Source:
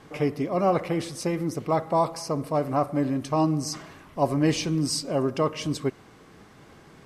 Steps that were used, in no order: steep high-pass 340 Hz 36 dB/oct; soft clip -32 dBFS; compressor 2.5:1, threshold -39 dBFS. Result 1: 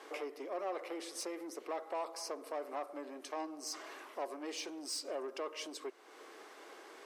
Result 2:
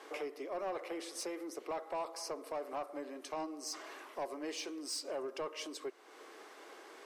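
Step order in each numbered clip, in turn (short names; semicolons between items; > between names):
compressor > soft clip > steep high-pass; compressor > steep high-pass > soft clip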